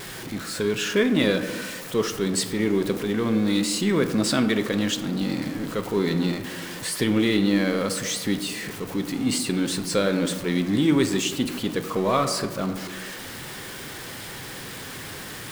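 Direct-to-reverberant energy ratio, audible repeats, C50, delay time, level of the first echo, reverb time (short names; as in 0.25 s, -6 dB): 7.0 dB, none, 9.5 dB, none, none, 1.4 s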